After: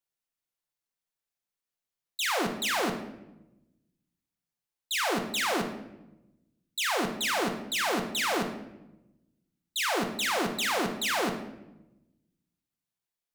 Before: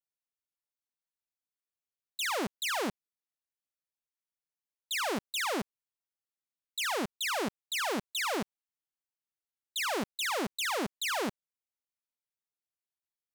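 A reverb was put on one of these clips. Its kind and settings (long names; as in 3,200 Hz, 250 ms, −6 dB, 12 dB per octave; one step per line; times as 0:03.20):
rectangular room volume 360 cubic metres, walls mixed, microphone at 0.79 metres
level +2.5 dB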